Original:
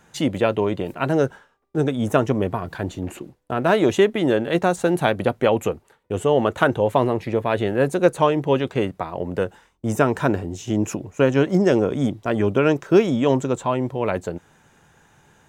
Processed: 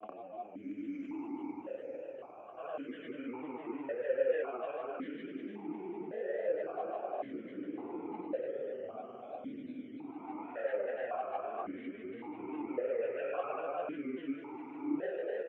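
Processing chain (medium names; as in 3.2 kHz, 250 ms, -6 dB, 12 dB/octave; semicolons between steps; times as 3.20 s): de-esser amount 75%; Paulstretch 7×, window 0.25 s, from 10.74 s; compression 3:1, threshold -26 dBFS, peak gain reduction 12.5 dB; three-band isolator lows -16 dB, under 500 Hz, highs -21 dB, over 2.1 kHz; feedback delay 760 ms, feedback 48%, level -7 dB; chorus voices 4, 0.46 Hz, delay 29 ms, depth 4.1 ms; granulator, pitch spread up and down by 3 st; stepped vowel filter 1.8 Hz; trim +9.5 dB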